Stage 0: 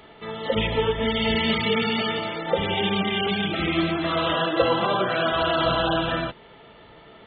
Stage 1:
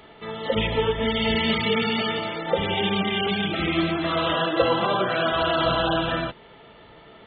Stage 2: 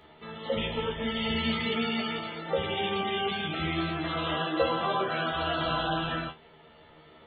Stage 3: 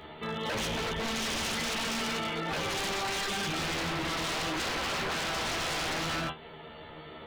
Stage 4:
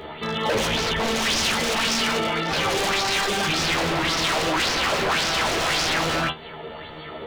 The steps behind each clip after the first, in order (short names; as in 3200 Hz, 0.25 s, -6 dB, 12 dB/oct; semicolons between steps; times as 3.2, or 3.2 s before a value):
nothing audible
resonator 78 Hz, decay 0.18 s, harmonics all, mix 100%
in parallel at +1 dB: compressor 4:1, threshold -41 dBFS, peak gain reduction 17 dB; on the sum: wavefolder -29 dBFS; gain +1.5 dB
LFO bell 1.8 Hz 420–5700 Hz +8 dB; gain +7.5 dB